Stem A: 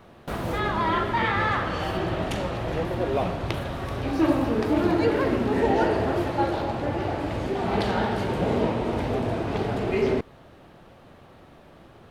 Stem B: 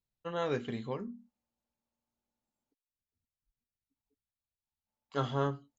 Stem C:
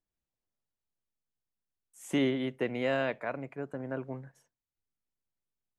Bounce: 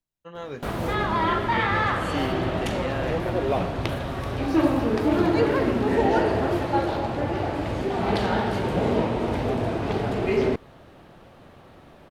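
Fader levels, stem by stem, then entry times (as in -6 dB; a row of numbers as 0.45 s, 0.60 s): +1.0 dB, -3.0 dB, -1.5 dB; 0.35 s, 0.00 s, 0.00 s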